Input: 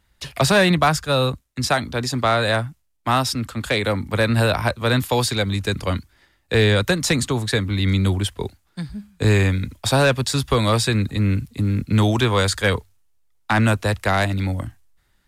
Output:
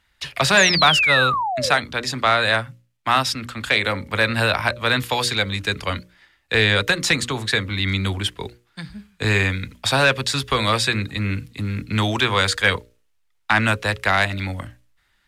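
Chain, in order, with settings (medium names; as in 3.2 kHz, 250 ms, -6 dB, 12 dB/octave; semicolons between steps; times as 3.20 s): painted sound fall, 0.57–1.73 s, 450–7400 Hz -23 dBFS; peaking EQ 2.3 kHz +10.5 dB 2.7 oct; hum notches 60/120/180/240/300/360/420/480/540/600 Hz; trim -5 dB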